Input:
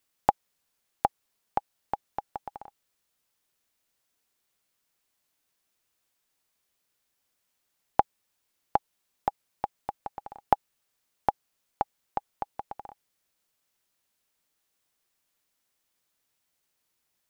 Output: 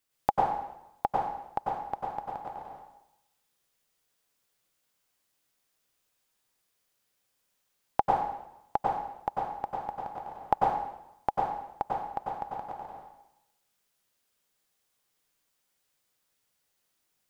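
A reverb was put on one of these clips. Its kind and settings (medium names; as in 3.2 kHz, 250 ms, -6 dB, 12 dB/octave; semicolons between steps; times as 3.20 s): plate-style reverb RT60 0.85 s, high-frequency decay 0.95×, pre-delay 85 ms, DRR -3.5 dB; trim -4 dB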